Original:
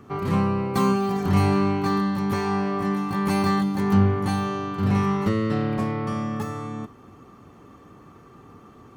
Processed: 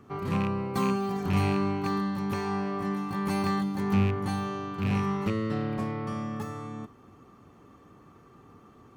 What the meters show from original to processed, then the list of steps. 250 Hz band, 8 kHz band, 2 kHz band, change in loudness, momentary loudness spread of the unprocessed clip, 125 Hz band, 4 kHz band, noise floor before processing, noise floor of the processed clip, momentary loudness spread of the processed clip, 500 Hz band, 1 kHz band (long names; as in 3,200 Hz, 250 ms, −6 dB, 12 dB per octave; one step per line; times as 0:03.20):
−6.0 dB, −6.0 dB, −5.0 dB, −6.0 dB, 8 LU, −6.0 dB, −5.0 dB, −49 dBFS, −55 dBFS, 8 LU, −6.0 dB, −6.0 dB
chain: loose part that buzzes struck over −19 dBFS, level −20 dBFS
level −6 dB